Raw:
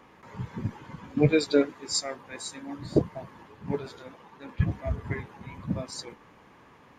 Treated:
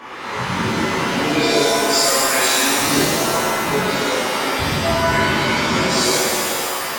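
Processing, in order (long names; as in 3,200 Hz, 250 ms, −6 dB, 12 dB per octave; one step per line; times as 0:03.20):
downward compressor, threshold −33 dBFS, peak gain reduction 17 dB
mid-hump overdrive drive 19 dB, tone 5,400 Hz, clips at −21 dBFS
reverb with rising layers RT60 2.1 s, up +7 semitones, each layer −2 dB, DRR −10.5 dB
level +3.5 dB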